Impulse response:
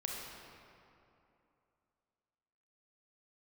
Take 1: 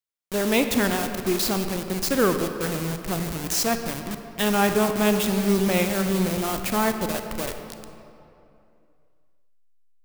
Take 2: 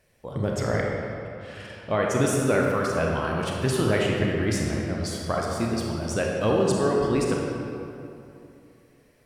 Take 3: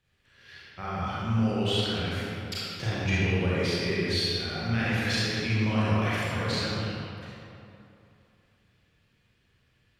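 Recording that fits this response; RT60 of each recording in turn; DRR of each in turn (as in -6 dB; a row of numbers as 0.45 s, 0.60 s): 2; 2.8 s, 2.8 s, 2.8 s; 6.5 dB, -2.0 dB, -9.5 dB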